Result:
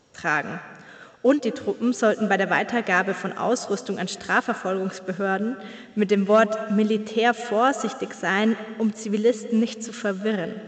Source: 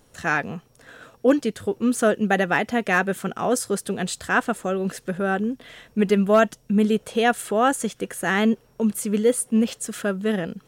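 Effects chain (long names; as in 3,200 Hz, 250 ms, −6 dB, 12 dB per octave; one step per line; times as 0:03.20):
high-pass filter 160 Hz 6 dB per octave
on a send at −13 dB: convolution reverb RT60 1.2 s, pre-delay 115 ms
on the sum: A-law companding 128 kbit/s 16,000 Hz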